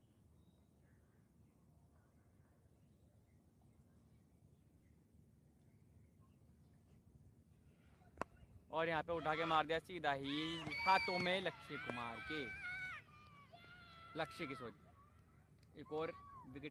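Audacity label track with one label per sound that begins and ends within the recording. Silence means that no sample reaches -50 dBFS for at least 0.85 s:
8.210000	14.700000	sound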